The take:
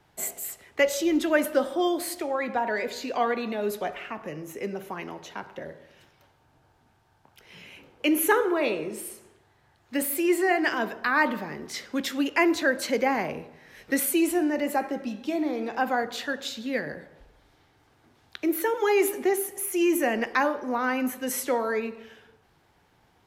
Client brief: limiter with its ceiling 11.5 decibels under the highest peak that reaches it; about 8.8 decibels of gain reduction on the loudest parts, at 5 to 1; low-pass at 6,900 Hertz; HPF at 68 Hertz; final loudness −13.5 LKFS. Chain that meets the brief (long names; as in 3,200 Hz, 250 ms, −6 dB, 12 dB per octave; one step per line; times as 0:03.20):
high-pass filter 68 Hz
low-pass filter 6,900 Hz
downward compressor 5 to 1, threshold −27 dBFS
level +21.5 dB
brickwall limiter −4 dBFS